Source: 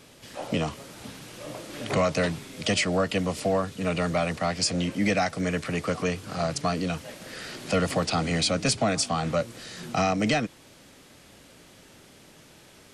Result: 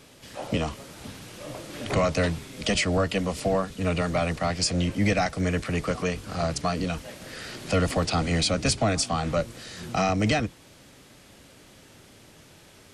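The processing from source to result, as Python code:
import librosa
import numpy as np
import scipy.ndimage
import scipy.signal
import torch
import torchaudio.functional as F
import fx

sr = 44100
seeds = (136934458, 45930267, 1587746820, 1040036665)

y = fx.octave_divider(x, sr, octaves=1, level_db=-4.0)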